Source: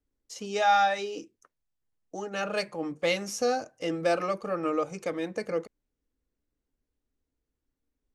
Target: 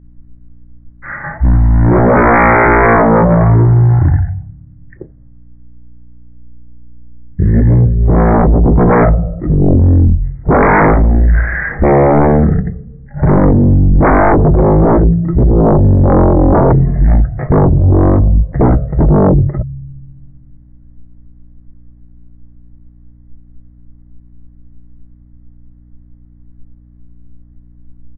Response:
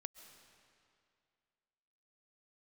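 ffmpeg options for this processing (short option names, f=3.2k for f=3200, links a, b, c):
-af "aemphasis=mode=reproduction:type=riaa,bandreject=f=117.3:t=h:w=4,bandreject=f=234.6:t=h:w=4,bandreject=f=351.9:t=h:w=4,bandreject=f=469.2:t=h:w=4,bandreject=f=586.5:t=h:w=4,adynamicequalizer=threshold=0.00447:dfrequency=2000:dqfactor=3:tfrequency=2000:tqfactor=3:attack=5:release=100:ratio=0.375:range=2.5:mode=boostabove:tftype=bell,aresample=16000,aeval=exprs='0.266*sin(PI/2*6.31*val(0)/0.266)':c=same,aresample=44100,asetrate=12745,aresample=44100,aeval=exprs='val(0)+0.00398*(sin(2*PI*60*n/s)+sin(2*PI*2*60*n/s)/2+sin(2*PI*3*60*n/s)/3+sin(2*PI*4*60*n/s)/4+sin(2*PI*5*60*n/s)/5)':c=same,volume=7dB"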